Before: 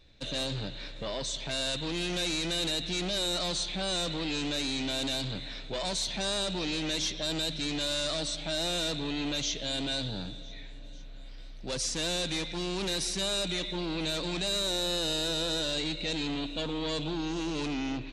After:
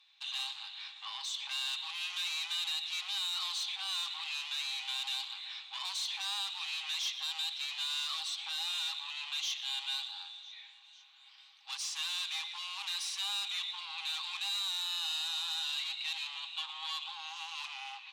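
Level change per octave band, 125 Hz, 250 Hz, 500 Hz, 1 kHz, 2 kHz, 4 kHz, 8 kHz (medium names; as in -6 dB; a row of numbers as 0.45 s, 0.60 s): under -40 dB, under -40 dB, under -35 dB, -5.5 dB, -3.0 dB, -2.5 dB, -7.0 dB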